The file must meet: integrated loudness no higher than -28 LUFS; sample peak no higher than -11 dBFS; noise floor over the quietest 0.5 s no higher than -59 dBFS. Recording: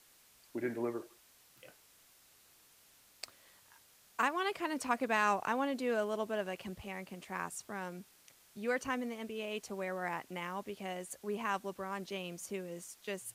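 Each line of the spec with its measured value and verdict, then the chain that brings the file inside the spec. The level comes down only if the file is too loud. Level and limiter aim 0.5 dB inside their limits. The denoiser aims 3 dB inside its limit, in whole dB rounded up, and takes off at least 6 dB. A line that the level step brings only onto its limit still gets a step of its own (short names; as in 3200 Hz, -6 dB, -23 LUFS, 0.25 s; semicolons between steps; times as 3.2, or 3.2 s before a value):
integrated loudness -37.5 LUFS: OK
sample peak -18.5 dBFS: OK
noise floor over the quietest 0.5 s -64 dBFS: OK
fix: none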